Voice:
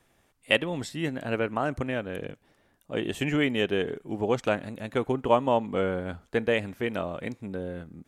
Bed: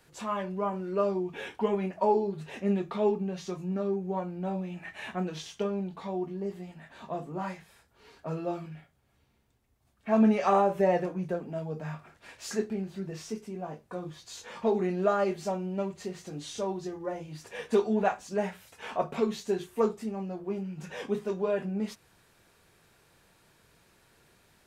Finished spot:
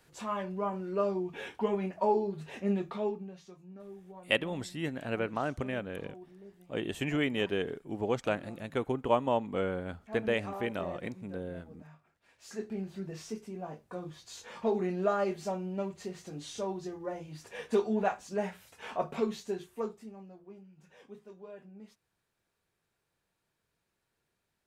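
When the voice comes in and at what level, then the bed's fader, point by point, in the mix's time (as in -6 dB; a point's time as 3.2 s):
3.80 s, -5.0 dB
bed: 2.86 s -2.5 dB
3.57 s -17.5 dB
12.26 s -17.5 dB
12.79 s -3 dB
19.25 s -3 dB
20.7 s -19 dB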